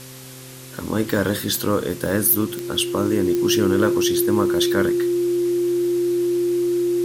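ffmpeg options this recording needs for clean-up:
-af "adeclick=t=4,bandreject=f=130:t=h:w=4,bandreject=f=260:t=h:w=4,bandreject=f=390:t=h:w=4,bandreject=f=520:t=h:w=4,bandreject=f=350:w=30,afwtdn=0.01"

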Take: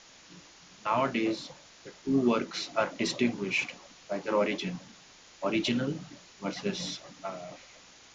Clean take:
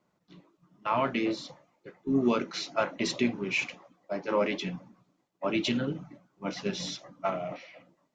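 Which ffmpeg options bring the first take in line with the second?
-af "afwtdn=0.0032,asetnsamples=n=441:p=0,asendcmd='7.23 volume volume 7.5dB',volume=0dB"

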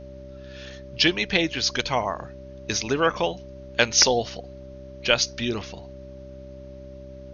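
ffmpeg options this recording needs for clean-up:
-af "bandreject=f=65.3:t=h:w=4,bandreject=f=130.6:t=h:w=4,bandreject=f=195.9:t=h:w=4,bandreject=f=261.2:t=h:w=4,bandreject=f=326.5:t=h:w=4,bandreject=f=391.8:t=h:w=4,bandreject=f=580:w=30,agate=range=-21dB:threshold=-33dB"

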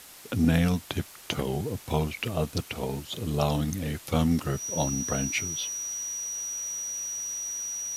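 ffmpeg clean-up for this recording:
-af "bandreject=f=5.8k:w=30,afwtdn=0.0045"

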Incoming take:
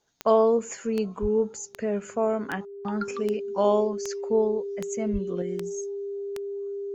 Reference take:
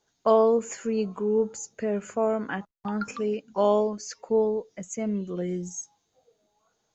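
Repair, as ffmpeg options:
-filter_complex "[0:a]adeclick=t=4,bandreject=f=400:w=30,asplit=3[a][b][c];[a]afade=t=out:st=1.21:d=0.02[d];[b]highpass=f=140:w=0.5412,highpass=f=140:w=1.3066,afade=t=in:st=1.21:d=0.02,afade=t=out:st=1.33:d=0.02[e];[c]afade=t=in:st=1.33:d=0.02[f];[d][e][f]amix=inputs=3:normalize=0,asplit=3[g][h][i];[g]afade=t=out:st=5.12:d=0.02[j];[h]highpass=f=140:w=0.5412,highpass=f=140:w=1.3066,afade=t=in:st=5.12:d=0.02,afade=t=out:st=5.24:d=0.02[k];[i]afade=t=in:st=5.24:d=0.02[l];[j][k][l]amix=inputs=3:normalize=0,asetnsamples=n=441:p=0,asendcmd='5.42 volume volume 4dB',volume=0dB"

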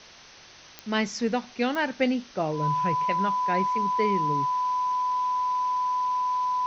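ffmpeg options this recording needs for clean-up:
-af "adeclick=t=4,bandreject=f=1k:w=30,afwtdn=0.0056"

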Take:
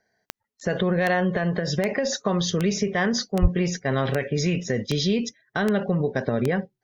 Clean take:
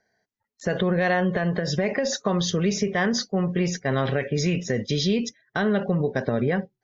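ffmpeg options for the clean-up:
-filter_complex "[0:a]adeclick=t=4,asplit=3[a][b][c];[a]afade=t=out:st=3.41:d=0.02[d];[b]highpass=f=140:w=0.5412,highpass=f=140:w=1.3066,afade=t=in:st=3.41:d=0.02,afade=t=out:st=3.53:d=0.02[e];[c]afade=t=in:st=3.53:d=0.02[f];[d][e][f]amix=inputs=3:normalize=0"

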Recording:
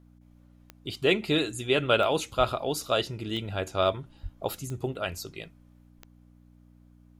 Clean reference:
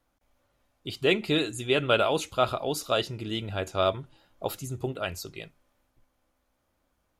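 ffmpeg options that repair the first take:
-filter_complex "[0:a]adeclick=t=4,bandreject=f=60:t=h:w=4,bandreject=f=120:t=h:w=4,bandreject=f=180:t=h:w=4,bandreject=f=240:t=h:w=4,bandreject=f=300:t=h:w=4,asplit=3[a][b][c];[a]afade=t=out:st=2.37:d=0.02[d];[b]highpass=f=140:w=0.5412,highpass=f=140:w=1.3066,afade=t=in:st=2.37:d=0.02,afade=t=out:st=2.49:d=0.02[e];[c]afade=t=in:st=2.49:d=0.02[f];[d][e][f]amix=inputs=3:normalize=0,asplit=3[g][h][i];[g]afade=t=out:st=4.22:d=0.02[j];[h]highpass=f=140:w=0.5412,highpass=f=140:w=1.3066,afade=t=in:st=4.22:d=0.02,afade=t=out:st=4.34:d=0.02[k];[i]afade=t=in:st=4.34:d=0.02[l];[j][k][l]amix=inputs=3:normalize=0"

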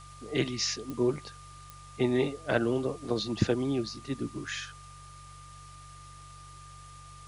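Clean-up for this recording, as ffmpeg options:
-af "adeclick=t=4,bandreject=f=47.6:t=h:w=4,bandreject=f=95.2:t=h:w=4,bandreject=f=142.8:t=h:w=4,bandreject=f=1.2k:w=30,afftdn=nr=27:nf=-49"

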